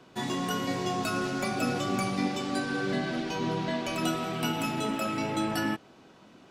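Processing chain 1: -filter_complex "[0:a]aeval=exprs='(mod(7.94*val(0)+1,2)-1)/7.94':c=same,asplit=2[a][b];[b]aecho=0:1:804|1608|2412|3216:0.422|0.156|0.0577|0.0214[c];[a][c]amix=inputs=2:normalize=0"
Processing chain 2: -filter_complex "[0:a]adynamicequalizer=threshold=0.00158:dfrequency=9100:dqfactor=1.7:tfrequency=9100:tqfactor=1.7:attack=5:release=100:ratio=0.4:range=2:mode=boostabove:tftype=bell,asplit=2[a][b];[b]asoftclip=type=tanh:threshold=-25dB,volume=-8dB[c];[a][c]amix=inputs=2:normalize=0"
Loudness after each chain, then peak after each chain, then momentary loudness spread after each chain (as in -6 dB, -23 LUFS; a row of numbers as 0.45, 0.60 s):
-30.0, -28.0 LUFS; -16.0, -14.5 dBFS; 4, 2 LU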